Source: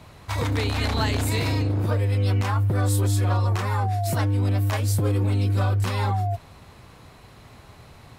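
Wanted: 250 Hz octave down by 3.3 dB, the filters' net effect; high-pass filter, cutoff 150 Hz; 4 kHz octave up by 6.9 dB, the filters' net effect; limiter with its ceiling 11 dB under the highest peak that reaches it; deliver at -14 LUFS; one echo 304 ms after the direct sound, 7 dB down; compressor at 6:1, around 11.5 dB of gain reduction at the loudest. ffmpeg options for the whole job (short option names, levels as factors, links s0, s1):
-af "highpass=150,equalizer=f=250:t=o:g=-3.5,equalizer=f=4000:t=o:g=8,acompressor=threshold=0.0251:ratio=6,alimiter=level_in=2.24:limit=0.0631:level=0:latency=1,volume=0.447,aecho=1:1:304:0.447,volume=20"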